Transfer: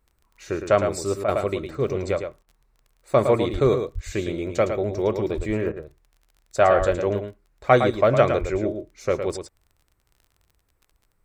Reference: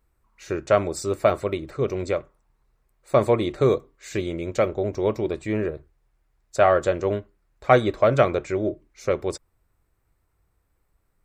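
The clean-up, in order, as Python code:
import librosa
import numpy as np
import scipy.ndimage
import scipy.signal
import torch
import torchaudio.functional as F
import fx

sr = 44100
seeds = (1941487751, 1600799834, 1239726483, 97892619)

y = fx.fix_declick_ar(x, sr, threshold=6.5)
y = fx.fix_deplosive(y, sr, at_s=(3.52, 3.94, 5.36, 6.78, 8.4))
y = fx.fix_interpolate(y, sr, at_s=(1.24, 2.43, 5.72), length_ms=42.0)
y = fx.fix_echo_inverse(y, sr, delay_ms=110, level_db=-7.5)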